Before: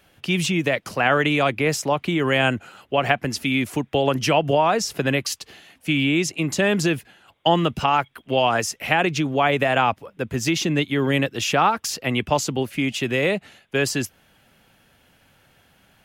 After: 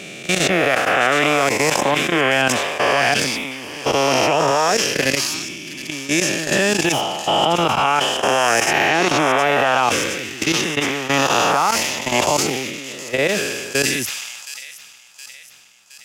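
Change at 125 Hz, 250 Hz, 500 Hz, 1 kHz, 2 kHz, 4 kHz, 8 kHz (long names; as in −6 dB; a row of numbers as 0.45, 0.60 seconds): −3.5, −0.5, +3.5, +4.5, +5.5, +6.5, +8.5 decibels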